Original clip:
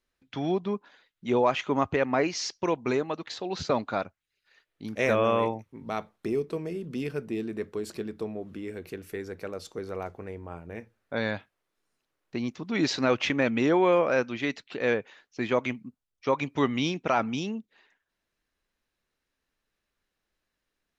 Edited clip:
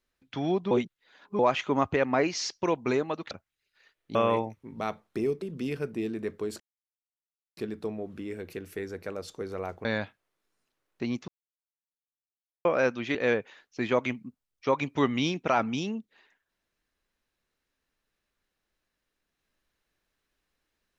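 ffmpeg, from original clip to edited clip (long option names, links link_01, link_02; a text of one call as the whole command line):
ffmpeg -i in.wav -filter_complex "[0:a]asplit=11[link_01][link_02][link_03][link_04][link_05][link_06][link_07][link_08][link_09][link_10][link_11];[link_01]atrim=end=0.712[link_12];[link_02]atrim=start=0.708:end=1.392,asetpts=PTS-STARTPTS,areverse[link_13];[link_03]atrim=start=1.388:end=3.312[link_14];[link_04]atrim=start=4.018:end=4.862[link_15];[link_05]atrim=start=5.238:end=6.512[link_16];[link_06]atrim=start=6.758:end=7.94,asetpts=PTS-STARTPTS,afade=type=out:start_time=1.178:duration=0.004:curve=hsin,apad=pad_dur=0.97[link_17];[link_07]atrim=start=7.94:end=10.222,asetpts=PTS-STARTPTS,afade=type=in:duration=0.004:curve=hsin[link_18];[link_08]atrim=start=11.178:end=12.61,asetpts=PTS-STARTPTS,afade=type=out:start_time=1.428:duration=0.004:curve=hsin[link_19];[link_09]atrim=start=12.61:end=13.98,asetpts=PTS-STARTPTS,volume=0[link_20];[link_10]atrim=start=13.98:end=14.482,asetpts=PTS-STARTPTS,afade=type=in:duration=0.004:curve=hsin[link_21];[link_11]atrim=start=14.748[link_22];[link_12][link_13]acrossfade=duration=0.004:curve1=hsin:curve2=hsin[link_23];[link_23][link_14]acrossfade=duration=0.004:curve1=hsin:curve2=hsin[link_24];[link_24][link_15]acrossfade=duration=0.004:curve1=hsin:curve2=hsin[link_25];[link_25][link_16]acrossfade=duration=0.004:curve1=hsin:curve2=hsin[link_26];[link_17][link_18]concat=n=2:v=0:a=1[link_27];[link_26][link_27]acrossfade=duration=0.004:curve1=hsin:curve2=hsin[link_28];[link_19][link_20][link_21]concat=n=3:v=0:a=1[link_29];[link_28][link_29]acrossfade=duration=0.004:curve1=hsin:curve2=hsin[link_30];[link_30][link_22]acrossfade=duration=0.004:curve1=hsin:curve2=hsin" out.wav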